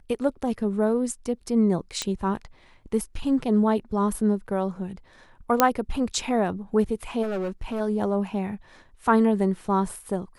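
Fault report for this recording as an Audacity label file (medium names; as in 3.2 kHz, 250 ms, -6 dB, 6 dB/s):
2.020000	2.020000	pop -11 dBFS
5.600000	5.600000	pop -2 dBFS
7.220000	7.810000	clipped -25 dBFS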